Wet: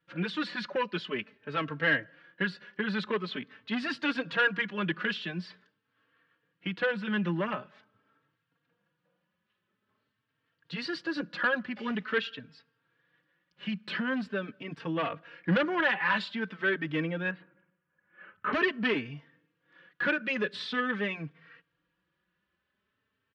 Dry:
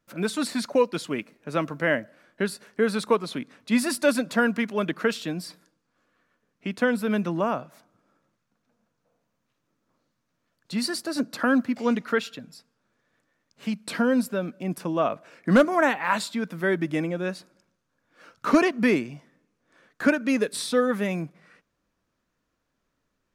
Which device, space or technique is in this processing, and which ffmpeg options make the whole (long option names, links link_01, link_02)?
barber-pole flanger into a guitar amplifier: -filter_complex "[0:a]asplit=2[link_01][link_02];[link_02]adelay=3.8,afreqshift=0.46[link_03];[link_01][link_03]amix=inputs=2:normalize=1,asoftclip=type=tanh:threshold=-21.5dB,highpass=76,equalizer=frequency=170:width_type=q:width=4:gain=4,equalizer=frequency=240:width_type=q:width=4:gain=-7,equalizer=frequency=680:width_type=q:width=4:gain=-8,equalizer=frequency=1700:width_type=q:width=4:gain=8,equalizer=frequency=3000:width_type=q:width=4:gain=8,lowpass=frequency=4100:width=0.5412,lowpass=frequency=4100:width=1.3066,asettb=1/sr,asplit=3[link_04][link_05][link_06];[link_04]atrim=end=17.314[link_07];[link_05]atrim=start=17.31:end=18.53,asetpts=PTS-STARTPTS,afade=type=in:duration=0.004:curve=qsin,afade=type=out:start_time=1.216:duration=0.004:curve=qsin,lowpass=frequency=2400:width=0.5412,lowpass=frequency=2400:width=1.3066[link_08];[link_06]atrim=start=18.526[link_09];[link_07][link_08]acrossfade=duration=0.004:curve1=hsin:curve2=qsin[link_10];[link_10][link_09]acrossfade=duration=0.004:curve1=qsin:curve2=hsin"